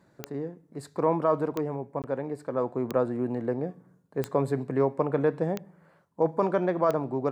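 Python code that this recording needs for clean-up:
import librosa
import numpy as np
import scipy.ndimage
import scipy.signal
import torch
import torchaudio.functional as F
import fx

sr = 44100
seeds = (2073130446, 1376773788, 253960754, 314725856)

y = fx.fix_declick_ar(x, sr, threshold=10.0)
y = fx.fix_interpolate(y, sr, at_s=(2.02,), length_ms=18.0)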